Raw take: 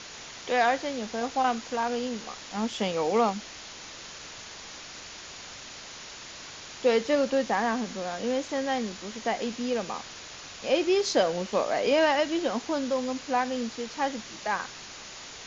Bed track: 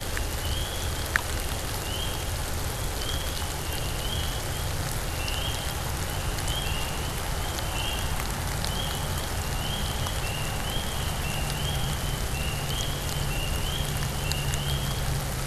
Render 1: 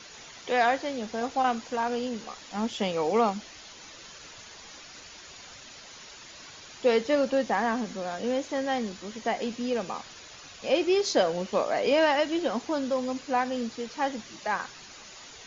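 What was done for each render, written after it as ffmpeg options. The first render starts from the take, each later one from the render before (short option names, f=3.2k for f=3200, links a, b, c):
-af "afftdn=nr=8:nf=-44"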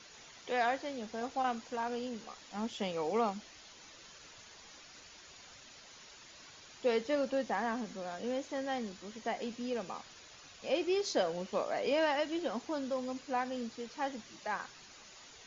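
-af "volume=-8dB"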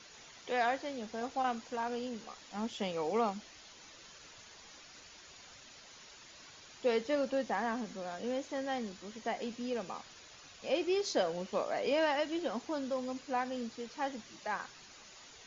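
-af anull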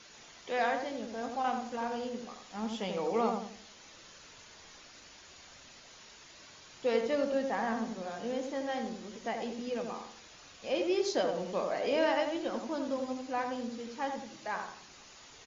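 -filter_complex "[0:a]asplit=2[a][b];[b]adelay=22,volume=-12dB[c];[a][c]amix=inputs=2:normalize=0,asplit=2[d][e];[e]adelay=86,lowpass=f=1.2k:p=1,volume=-3.5dB,asplit=2[f][g];[g]adelay=86,lowpass=f=1.2k:p=1,volume=0.41,asplit=2[h][i];[i]adelay=86,lowpass=f=1.2k:p=1,volume=0.41,asplit=2[j][k];[k]adelay=86,lowpass=f=1.2k:p=1,volume=0.41,asplit=2[l][m];[m]adelay=86,lowpass=f=1.2k:p=1,volume=0.41[n];[d][f][h][j][l][n]amix=inputs=6:normalize=0"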